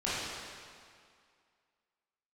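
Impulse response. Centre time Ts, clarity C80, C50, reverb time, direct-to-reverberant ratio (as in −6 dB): 147 ms, −1.0 dB, −4.0 dB, 2.1 s, −11.0 dB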